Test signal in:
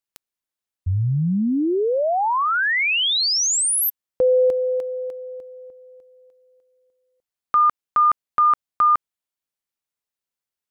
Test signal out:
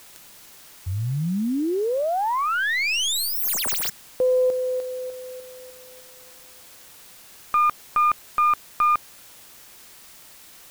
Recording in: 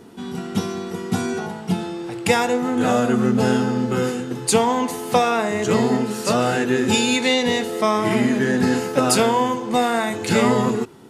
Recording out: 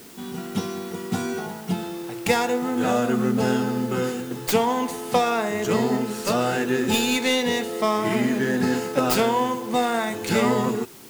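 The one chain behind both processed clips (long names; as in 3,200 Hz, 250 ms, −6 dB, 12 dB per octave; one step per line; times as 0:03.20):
stylus tracing distortion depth 0.14 ms
low-shelf EQ 60 Hz −10.5 dB
in parallel at −3.5 dB: bit-depth reduction 6 bits, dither triangular
on the sum: level −7.5 dB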